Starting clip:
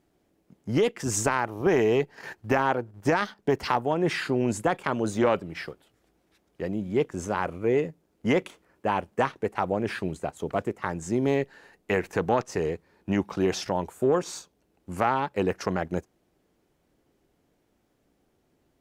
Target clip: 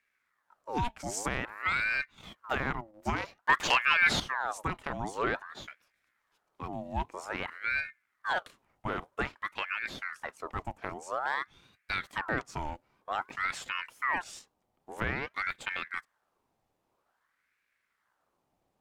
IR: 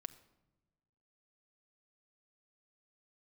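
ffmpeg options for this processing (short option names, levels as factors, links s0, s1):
-filter_complex "[0:a]asettb=1/sr,asplit=3[s0][s1][s2];[s0]atrim=end=3.494[s3];[s1]atrim=start=3.49:end=4.2,asetpts=PTS-STARTPTS,afade=t=in:d=0.004:c=qsin,afade=t=out:st=0.706:d=0.004:c=qsin,aeval=exprs='0.398*sin(PI/2*2*val(0)/0.398)':c=same[s4];[s2]atrim=start=4.196[s5];[s3][s4]acrossfade=d=0.004:c1=hsin:c2=qsin[s6];[s6][s5]acrossfade=d=0.004:c1=qsin:c2=hsin,aeval=exprs='val(0)*sin(2*PI*1200*n/s+1200*0.65/0.51*sin(2*PI*0.51*n/s))':c=same,volume=0.531"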